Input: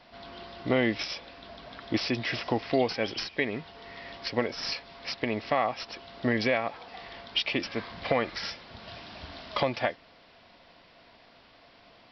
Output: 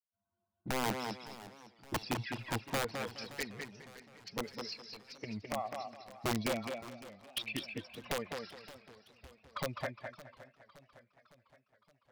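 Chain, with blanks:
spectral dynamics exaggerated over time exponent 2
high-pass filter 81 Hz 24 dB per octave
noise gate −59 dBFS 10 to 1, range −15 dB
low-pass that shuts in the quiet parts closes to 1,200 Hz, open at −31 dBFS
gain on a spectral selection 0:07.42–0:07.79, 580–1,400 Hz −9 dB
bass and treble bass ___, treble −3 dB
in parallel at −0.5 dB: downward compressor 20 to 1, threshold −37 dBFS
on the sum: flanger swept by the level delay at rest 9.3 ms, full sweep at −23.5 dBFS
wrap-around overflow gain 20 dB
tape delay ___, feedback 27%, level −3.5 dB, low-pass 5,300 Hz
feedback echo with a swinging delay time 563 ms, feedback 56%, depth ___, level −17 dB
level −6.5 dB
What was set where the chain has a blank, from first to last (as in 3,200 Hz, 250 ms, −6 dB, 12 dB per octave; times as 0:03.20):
+7 dB, 208 ms, 179 cents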